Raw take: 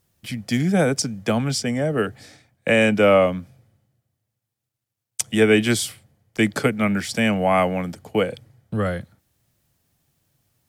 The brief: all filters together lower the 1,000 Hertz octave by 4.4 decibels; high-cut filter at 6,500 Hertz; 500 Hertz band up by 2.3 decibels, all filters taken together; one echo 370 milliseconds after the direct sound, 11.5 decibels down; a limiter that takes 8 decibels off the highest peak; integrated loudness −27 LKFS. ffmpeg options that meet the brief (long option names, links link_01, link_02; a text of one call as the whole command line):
ffmpeg -i in.wav -af "lowpass=6500,equalizer=frequency=500:width_type=o:gain=5,equalizer=frequency=1000:width_type=o:gain=-9,alimiter=limit=-11dB:level=0:latency=1,aecho=1:1:370:0.266,volume=-4.5dB" out.wav